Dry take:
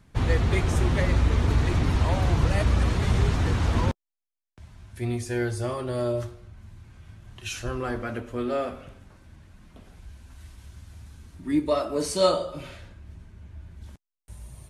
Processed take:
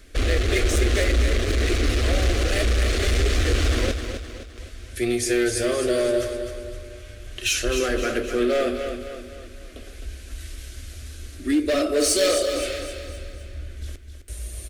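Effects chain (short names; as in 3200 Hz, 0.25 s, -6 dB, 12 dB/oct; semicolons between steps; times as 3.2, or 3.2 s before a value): bell 140 Hz -12.5 dB 1.6 oct; in parallel at 0 dB: compressor, threshold -33 dBFS, peak gain reduction 15.5 dB; on the sum: overloaded stage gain 23.5 dB; fixed phaser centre 380 Hz, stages 4; feedback echo 0.259 s, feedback 46%, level -8 dB; gain +8.5 dB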